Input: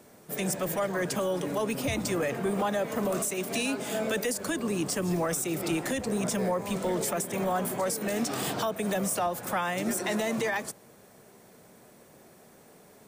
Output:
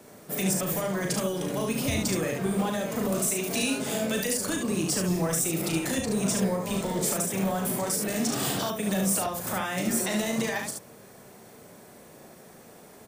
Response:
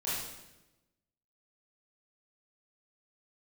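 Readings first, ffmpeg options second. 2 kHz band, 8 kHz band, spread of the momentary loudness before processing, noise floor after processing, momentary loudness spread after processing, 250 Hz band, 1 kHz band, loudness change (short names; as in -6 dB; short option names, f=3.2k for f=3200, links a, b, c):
+0.5 dB, +5.0 dB, 2 LU, -50 dBFS, 4 LU, +3.0 dB, -1.5 dB, +2.0 dB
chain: -filter_complex "[0:a]acrossover=split=240|3000[a][b][c];[b]acompressor=threshold=-40dB:ratio=2[d];[a][d][c]amix=inputs=3:normalize=0,aecho=1:1:37|72:0.531|0.631,volume=3dB"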